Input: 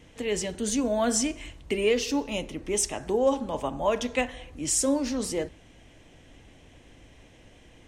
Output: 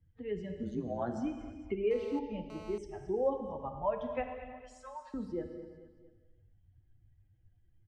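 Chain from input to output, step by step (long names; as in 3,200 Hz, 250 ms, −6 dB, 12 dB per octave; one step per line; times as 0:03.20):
spectral dynamics exaggerated over time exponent 2
low-pass filter 1,300 Hz 12 dB per octave
0:00.63–0:01.17: amplitude modulation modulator 120 Hz, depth 100%
0:04.52–0:05.14: Butterworth high-pass 780 Hz 36 dB per octave
repeating echo 224 ms, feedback 40%, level −17.5 dB
reverb whose tail is shaped and stops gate 470 ms falling, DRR 5.5 dB
0:01.91–0:02.78: phone interference −48 dBFS
multiband upward and downward compressor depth 40%
level −3.5 dB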